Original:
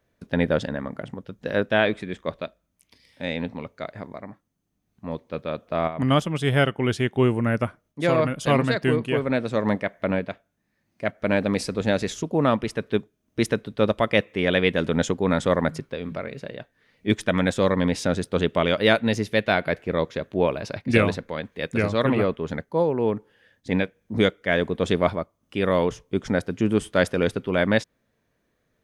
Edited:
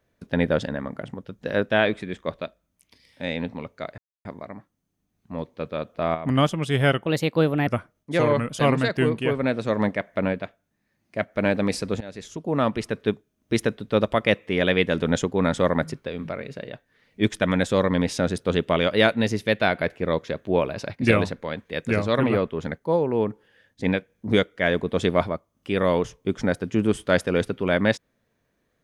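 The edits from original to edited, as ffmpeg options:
-filter_complex "[0:a]asplit=7[a][b][c][d][e][f][g];[a]atrim=end=3.98,asetpts=PTS-STARTPTS,afade=t=out:st=3.976:d=0.004:c=hsin,apad=pad_dur=0.27[h];[b]atrim=start=3.98:end=6.794,asetpts=PTS-STARTPTS,afade=t=in:d=0.004:c=hsin[i];[c]atrim=start=6.79:end=7.56,asetpts=PTS-STARTPTS,asetrate=55566,aresample=44100[j];[d]atrim=start=7.556:end=8.084[k];[e]atrim=start=8.08:end=8.36,asetpts=PTS-STARTPTS,asetrate=40572,aresample=44100[l];[f]atrim=start=8.356:end=11.87,asetpts=PTS-STARTPTS,afade=t=out:st=3.51:d=0.004:c=hsin:silence=0.0749894[m];[g]atrim=start=11.87,asetpts=PTS-STARTPTS,afade=t=in:d=0.77:silence=0.0749894[n];[h][i]concat=n=2:v=0:a=1[o];[o][j]acrossfade=d=0.004:c1=hsin:c2=hsin[p];[p][k]acrossfade=d=0.004:c1=hsin:c2=hsin[q];[q][l]acrossfade=d=0.004:c1=hsin:c2=hsin[r];[m][n]concat=n=2:v=0:a=1[s];[r][s]acrossfade=d=0.004:c1=hsin:c2=hsin"

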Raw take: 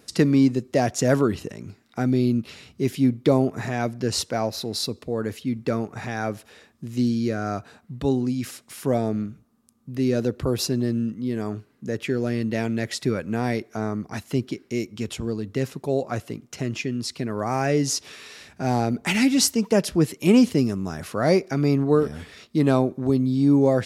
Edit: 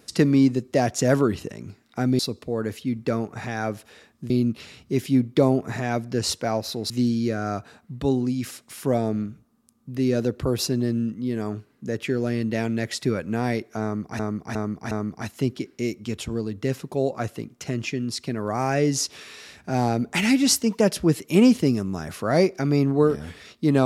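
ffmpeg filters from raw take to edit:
-filter_complex "[0:a]asplit=7[a][b][c][d][e][f][g];[a]atrim=end=2.192[h];[b]atrim=start=4.788:end=6.902[i];[c]atrim=start=2.188:end=4.792[j];[d]atrim=start=6.898:end=14.192[k];[e]atrim=start=13.828:end=14.192[l];[f]atrim=start=13.828:end=14.192[m];[g]atrim=start=13.828[n];[h][i]acrossfade=d=0.004:c1=hsin:c2=hsin[o];[o][j]acrossfade=d=0.004:c1=hsin:c2=hsin[p];[p][k]acrossfade=d=0.004:c1=hsin:c2=hsin[q];[q][l]acrossfade=d=0.004:c1=hsin:c2=hsin[r];[r][m]acrossfade=d=0.004:c1=hsin:c2=hsin[s];[s][n]acrossfade=d=0.004:c1=hsin:c2=hsin"

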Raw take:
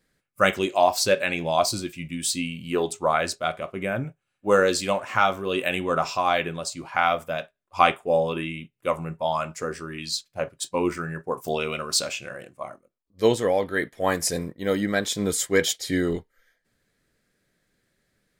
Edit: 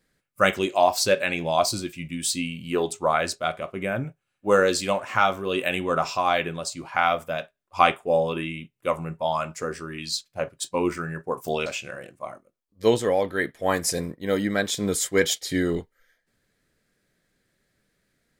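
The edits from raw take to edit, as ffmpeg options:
-filter_complex "[0:a]asplit=2[a][b];[a]atrim=end=11.662[c];[b]atrim=start=12.038[d];[c][d]acrossfade=d=0.004:c1=hsin:c2=hsin"

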